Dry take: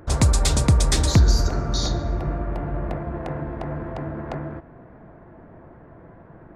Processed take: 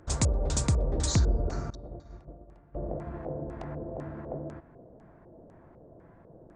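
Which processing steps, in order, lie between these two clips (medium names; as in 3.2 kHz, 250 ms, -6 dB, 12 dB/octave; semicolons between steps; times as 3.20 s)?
LFO low-pass square 2 Hz 550–7500 Hz; 1.70–2.75 s: expander -13 dBFS; resampled via 22.05 kHz; trim -9 dB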